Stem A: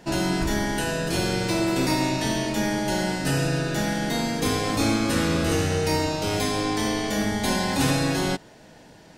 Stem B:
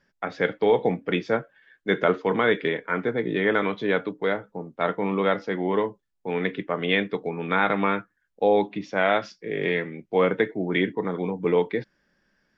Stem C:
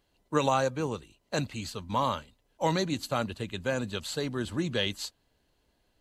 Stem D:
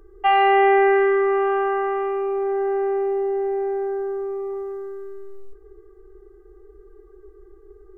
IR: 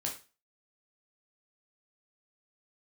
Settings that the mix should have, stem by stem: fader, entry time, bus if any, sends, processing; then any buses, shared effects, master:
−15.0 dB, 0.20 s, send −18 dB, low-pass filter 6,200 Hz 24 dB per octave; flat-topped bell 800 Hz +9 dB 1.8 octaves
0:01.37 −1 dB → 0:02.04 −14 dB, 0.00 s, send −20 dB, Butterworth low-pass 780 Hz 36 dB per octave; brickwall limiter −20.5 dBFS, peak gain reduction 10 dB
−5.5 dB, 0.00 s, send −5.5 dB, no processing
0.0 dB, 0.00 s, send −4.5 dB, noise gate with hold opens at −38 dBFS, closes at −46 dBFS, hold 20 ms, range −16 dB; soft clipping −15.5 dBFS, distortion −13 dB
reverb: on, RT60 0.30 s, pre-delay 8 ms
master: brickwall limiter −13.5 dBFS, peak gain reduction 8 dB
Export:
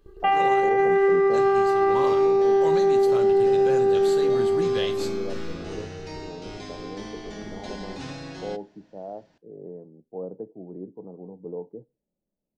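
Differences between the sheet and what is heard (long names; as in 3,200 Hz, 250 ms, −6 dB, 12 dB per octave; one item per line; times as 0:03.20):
stem A: missing flat-topped bell 800 Hz +9 dB 1.8 octaves
stem B: missing brickwall limiter −20.5 dBFS, peak gain reduction 10 dB
stem D: missing soft clipping −15.5 dBFS, distortion −13 dB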